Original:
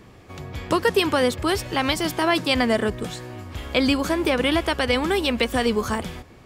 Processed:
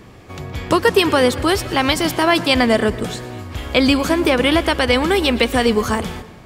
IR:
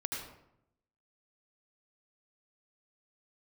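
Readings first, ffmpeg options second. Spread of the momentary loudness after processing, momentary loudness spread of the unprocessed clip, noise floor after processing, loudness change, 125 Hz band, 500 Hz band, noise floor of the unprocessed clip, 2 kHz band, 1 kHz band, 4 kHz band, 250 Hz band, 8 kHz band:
15 LU, 15 LU, −41 dBFS, +5.5 dB, +5.5 dB, +5.5 dB, −47 dBFS, +5.5 dB, +5.5 dB, +5.5 dB, +5.5 dB, +5.5 dB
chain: -filter_complex "[0:a]asplit=2[link_01][link_02];[1:a]atrim=start_sample=2205,adelay=118[link_03];[link_02][link_03]afir=irnorm=-1:irlink=0,volume=-18dB[link_04];[link_01][link_04]amix=inputs=2:normalize=0,volume=5.5dB"

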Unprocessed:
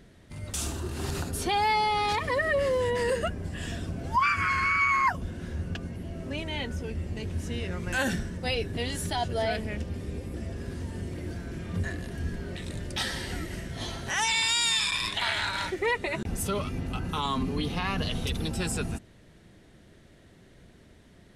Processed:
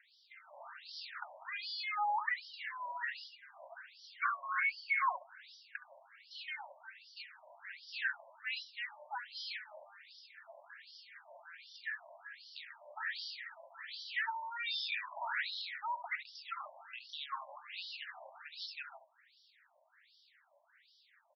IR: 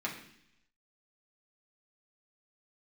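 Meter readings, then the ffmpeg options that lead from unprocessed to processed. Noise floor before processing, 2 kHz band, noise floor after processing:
−55 dBFS, −8.5 dB, −70 dBFS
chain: -filter_complex "[0:a]highpass=440,equalizer=frequency=730:width_type=q:width=4:gain=-6,equalizer=frequency=1100:width_type=q:width=4:gain=-8,equalizer=frequency=3000:width_type=q:width=4:gain=-8,equalizer=frequency=4800:width_type=q:width=4:gain=8,lowpass=frequency=6200:width=0.5412,lowpass=frequency=6200:width=1.3066,asplit=2[link_01][link_02];[link_02]alimiter=limit=-22.5dB:level=0:latency=1,volume=2dB[link_03];[link_01][link_03]amix=inputs=2:normalize=0,acrossover=split=2500[link_04][link_05];[link_05]acompressor=threshold=-36dB:ratio=4:attack=1:release=60[link_06];[link_04][link_06]amix=inputs=2:normalize=0,aecho=1:1:20|70:0.168|0.266,afftfilt=real='re*between(b*sr/1024,760*pow(4200/760,0.5+0.5*sin(2*PI*1.3*pts/sr))/1.41,760*pow(4200/760,0.5+0.5*sin(2*PI*1.3*pts/sr))*1.41)':imag='im*between(b*sr/1024,760*pow(4200/760,0.5+0.5*sin(2*PI*1.3*pts/sr))/1.41,760*pow(4200/760,0.5+0.5*sin(2*PI*1.3*pts/sr))*1.41)':win_size=1024:overlap=0.75,volume=-5.5dB"

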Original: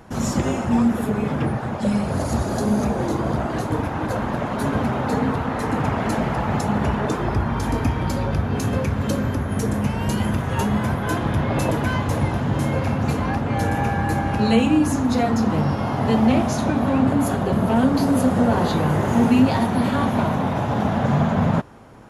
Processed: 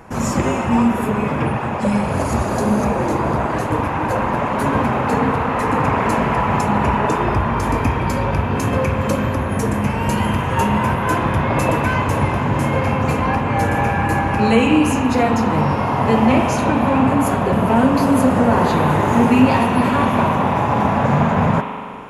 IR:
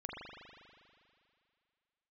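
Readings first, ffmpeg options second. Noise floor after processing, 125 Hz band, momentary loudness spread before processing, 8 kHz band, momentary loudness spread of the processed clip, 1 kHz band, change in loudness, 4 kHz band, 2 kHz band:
−22 dBFS, +2.0 dB, 5 LU, +2.5 dB, 5 LU, +7.5 dB, +4.0 dB, +3.0 dB, +6.5 dB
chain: -filter_complex "[0:a]asplit=2[link_01][link_02];[link_02]highpass=410,equalizer=frequency=650:width_type=q:width=4:gain=-8,equalizer=frequency=990:width_type=q:width=4:gain=7,equalizer=frequency=1500:width_type=q:width=4:gain=-5,equalizer=frequency=2600:width_type=q:width=4:gain=8,equalizer=frequency=5000:width_type=q:width=4:gain=-7,lowpass=frequency=6700:width=0.5412,lowpass=frequency=6700:width=1.3066[link_03];[1:a]atrim=start_sample=2205,lowpass=5700[link_04];[link_03][link_04]afir=irnorm=-1:irlink=0,volume=-1dB[link_05];[link_01][link_05]amix=inputs=2:normalize=0,volume=2.5dB"

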